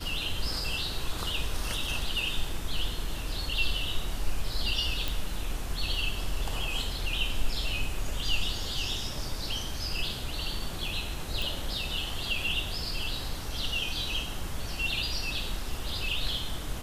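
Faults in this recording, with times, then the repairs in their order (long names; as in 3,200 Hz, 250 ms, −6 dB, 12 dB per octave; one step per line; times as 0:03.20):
0:05.08: click
0:11.42: click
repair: click removal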